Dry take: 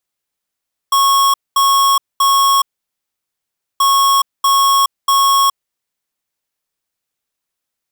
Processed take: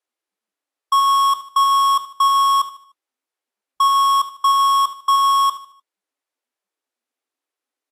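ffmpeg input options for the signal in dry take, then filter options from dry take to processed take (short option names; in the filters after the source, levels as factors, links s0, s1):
-f lavfi -i "aevalsrc='0.266*(2*lt(mod(1100*t,1),0.5)-1)*clip(min(mod(mod(t,2.88),0.64),0.42-mod(mod(t,2.88),0.64))/0.005,0,1)*lt(mod(t,2.88),1.92)':d=5.76:s=44100"
-af "highshelf=f=3300:g=-11.5,aecho=1:1:75|150|225|300:0.2|0.0818|0.0335|0.0138" -ar 32000 -c:a libvorbis -b:a 48k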